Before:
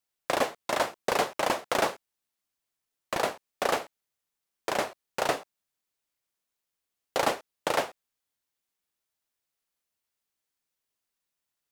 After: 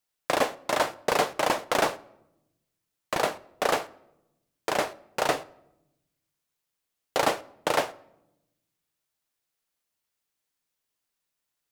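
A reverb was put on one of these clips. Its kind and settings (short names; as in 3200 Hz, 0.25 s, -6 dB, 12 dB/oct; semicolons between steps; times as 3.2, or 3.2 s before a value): shoebox room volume 3000 m³, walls furnished, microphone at 0.46 m; gain +2 dB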